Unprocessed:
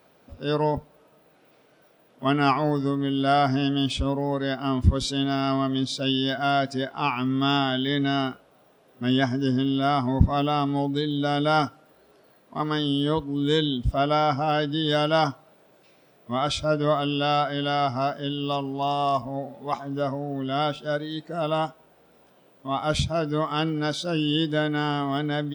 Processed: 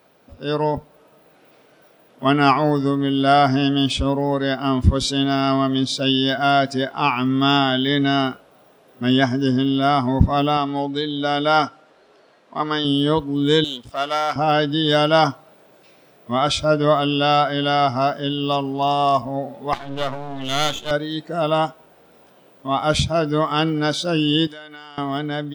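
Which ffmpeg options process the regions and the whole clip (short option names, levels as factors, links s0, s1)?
-filter_complex "[0:a]asettb=1/sr,asplit=3[s0][s1][s2];[s0]atrim=end=10.574[s3];[s1]atrim=start=10.57:end=12.85,asetpts=PTS-STARTPTS,afade=t=in:d=0.004:c=qsin,afade=t=out:st=2.276:d=0.004:c=qsin,lowpass=6600,lowshelf=f=240:g=-10[s4];[s2]atrim=start=12.846[s5];[s3][s4]acrossfade=d=0.004:c1=hsin:c2=qsin[s6];[s6][s5]acrossfade=d=0.004:c1=qsin:c2=hsin,asettb=1/sr,asplit=3[s7][s8][s9];[s7]atrim=end=13.644[s10];[s8]atrim=start=13.64:end=14.36,asetpts=PTS-STARTPTS,afade=t=in:d=0.004:c=qsin,afade=t=out:st=0.716:d=0.004:c=qsin,aeval=exprs='if(lt(val(0),0),0.447*val(0),val(0))':c=same,highpass=f=940:p=1[s11];[s9]atrim=start=14.356[s12];[s10][s11]acrossfade=d=0.004:c1=hsin:c2=qsin[s13];[s13][s12]acrossfade=d=0.004:c1=qsin:c2=hsin,asettb=1/sr,asplit=3[s14][s15][s16];[s14]atrim=end=19.734[s17];[s15]atrim=start=19.73:end=20.91,asetpts=PTS-STARTPTS,afade=t=in:d=0.004:c=qsin,afade=t=out:st=1.176:d=0.004:c=qsin,lowpass=f=3400:t=q:w=3.5,aeval=exprs='max(val(0),0)':c=same[s18];[s16]atrim=start=20.906[s19];[s17][s18]acrossfade=d=0.004:c1=hsin:c2=qsin[s20];[s20][s19]acrossfade=d=0.004:c1=qsin:c2=hsin,asettb=1/sr,asplit=3[s21][s22][s23];[s21]atrim=end=24.474[s24];[s22]atrim=start=24.47:end=24.98,asetpts=PTS-STARTPTS,afade=t=in:d=0.004:c=qsin,afade=t=out:st=0.506:d=0.004:c=qsin,highpass=f=1400:p=1,acompressor=threshold=0.00891:ratio=4:attack=3.2:release=140:knee=1:detection=peak[s25];[s23]atrim=start=24.976[s26];[s24][s25]acrossfade=d=0.004:c1=hsin:c2=qsin[s27];[s27][s26]acrossfade=d=0.004:c1=qsin:c2=hsin,lowshelf=f=160:g=-3.5,dynaudnorm=f=140:g=13:m=1.58,volume=1.33"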